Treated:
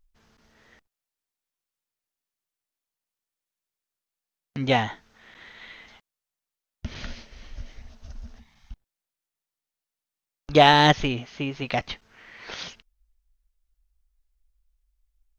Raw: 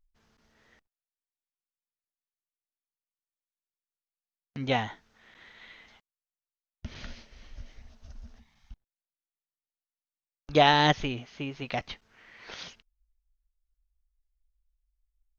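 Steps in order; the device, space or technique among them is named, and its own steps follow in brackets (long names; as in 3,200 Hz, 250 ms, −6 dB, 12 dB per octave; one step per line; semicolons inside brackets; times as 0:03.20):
parallel distortion (in parallel at −14 dB: hard clipping −23.5 dBFS, distortion −6 dB)
on the sum: level +4.5 dB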